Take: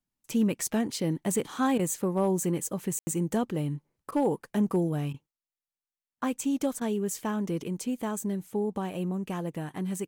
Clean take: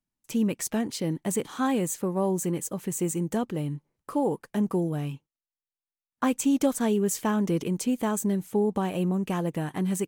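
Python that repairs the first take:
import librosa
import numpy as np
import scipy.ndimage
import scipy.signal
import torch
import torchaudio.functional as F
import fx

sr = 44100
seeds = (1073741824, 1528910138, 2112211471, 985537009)

y = fx.fix_declip(x, sr, threshold_db=-17.5)
y = fx.fix_ambience(y, sr, seeds[0], print_start_s=3.65, print_end_s=4.15, start_s=2.99, end_s=3.07)
y = fx.fix_interpolate(y, sr, at_s=(1.78, 4.11, 5.13, 6.8), length_ms=11.0)
y = fx.gain(y, sr, db=fx.steps((0.0, 0.0), (5.31, 5.0)))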